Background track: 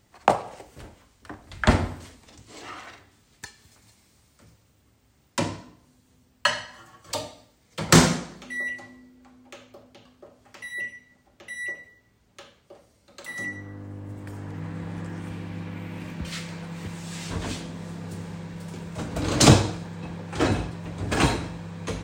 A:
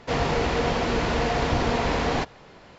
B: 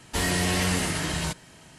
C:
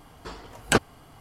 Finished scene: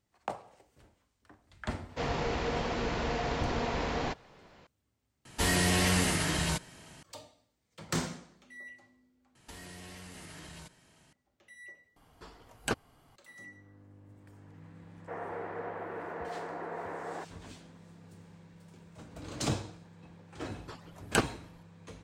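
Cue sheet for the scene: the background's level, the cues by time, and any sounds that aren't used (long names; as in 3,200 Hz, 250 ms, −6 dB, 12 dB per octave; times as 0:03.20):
background track −17.5 dB
0:01.89: mix in A −8.5 dB
0:05.25: overwrite with B −2 dB
0:09.35: overwrite with B −12.5 dB + downward compressor 12 to 1, threshold −31 dBFS
0:11.96: overwrite with C −11.5 dB
0:15.00: mix in A −13 dB + Chebyshev band-pass filter 330–1,800 Hz, order 3
0:20.43: mix in C −6.5 dB + harmonic-percussive split with one part muted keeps percussive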